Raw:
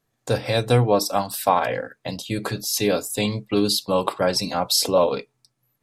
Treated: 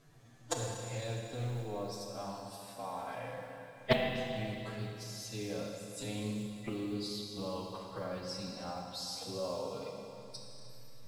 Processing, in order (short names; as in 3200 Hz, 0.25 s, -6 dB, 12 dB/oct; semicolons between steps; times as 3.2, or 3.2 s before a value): LPF 8700 Hz 12 dB/oct; low shelf 130 Hz +11 dB; limiter -11 dBFS, peak gain reduction 8 dB; flipped gate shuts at -24 dBFS, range -30 dB; time stretch by phase-locked vocoder 1.9×; modulation noise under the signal 30 dB; Schroeder reverb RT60 2.9 s, combs from 26 ms, DRR 0.5 dB; Doppler distortion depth 0.29 ms; gain +9.5 dB